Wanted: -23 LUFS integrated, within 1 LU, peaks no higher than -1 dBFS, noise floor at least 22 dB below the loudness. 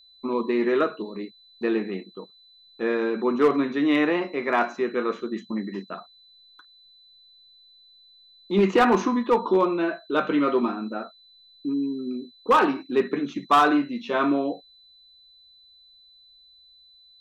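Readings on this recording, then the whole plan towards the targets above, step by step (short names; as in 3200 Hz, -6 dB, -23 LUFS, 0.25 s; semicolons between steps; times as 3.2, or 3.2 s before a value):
clipped 0.3%; flat tops at -12.0 dBFS; steady tone 4000 Hz; tone level -52 dBFS; loudness -24.0 LUFS; peak -12.0 dBFS; loudness target -23.0 LUFS
-> clip repair -12 dBFS; notch 4000 Hz, Q 30; gain +1 dB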